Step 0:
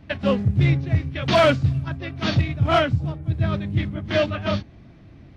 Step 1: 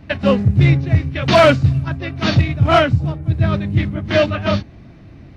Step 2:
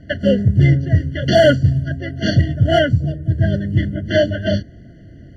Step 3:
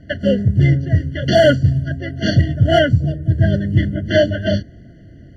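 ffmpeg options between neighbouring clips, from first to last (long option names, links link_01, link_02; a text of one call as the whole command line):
ffmpeg -i in.wav -af "bandreject=frequency=3300:width=17,volume=6dB" out.wav
ffmpeg -i in.wav -af "afftfilt=real='re*eq(mod(floor(b*sr/1024/690),2),0)':imag='im*eq(mod(floor(b*sr/1024/690),2),0)':win_size=1024:overlap=0.75" out.wav
ffmpeg -i in.wav -af "dynaudnorm=framelen=220:gausssize=11:maxgain=11.5dB,volume=-1dB" out.wav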